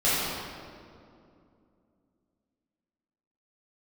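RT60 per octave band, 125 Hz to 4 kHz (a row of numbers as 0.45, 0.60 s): 3.0, 3.5, 2.8, 2.3, 1.7, 1.4 s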